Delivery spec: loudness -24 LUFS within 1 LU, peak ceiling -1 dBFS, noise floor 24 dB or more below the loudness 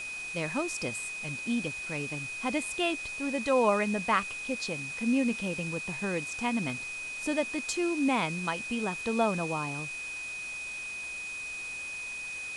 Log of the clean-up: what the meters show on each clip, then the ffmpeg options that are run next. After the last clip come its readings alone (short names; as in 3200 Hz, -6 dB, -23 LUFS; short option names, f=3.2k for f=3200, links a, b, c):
steady tone 2500 Hz; tone level -36 dBFS; noise floor -39 dBFS; noise floor target -55 dBFS; loudness -31.0 LUFS; peak -12.0 dBFS; loudness target -24.0 LUFS
-> -af "bandreject=f=2.5k:w=30"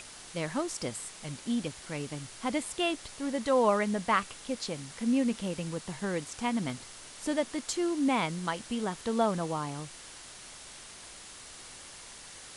steady tone none; noise floor -48 dBFS; noise floor target -56 dBFS
-> -af "afftdn=nr=8:nf=-48"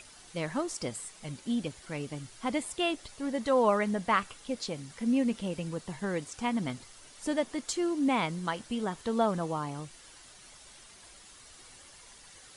noise floor -54 dBFS; noise floor target -56 dBFS
-> -af "afftdn=nr=6:nf=-54"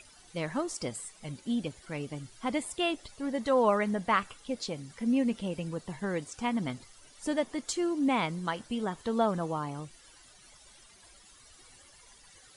noise floor -57 dBFS; loudness -32.0 LUFS; peak -12.5 dBFS; loudness target -24.0 LUFS
-> -af "volume=8dB"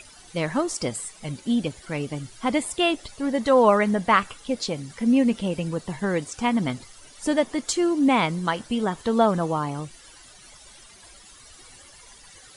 loudness -24.0 LUFS; peak -4.5 dBFS; noise floor -49 dBFS